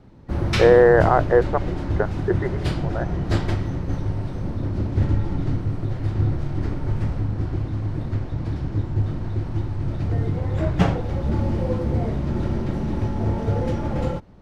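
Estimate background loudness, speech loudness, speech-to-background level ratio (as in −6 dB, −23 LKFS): −25.0 LKFS, −18.5 LKFS, 6.5 dB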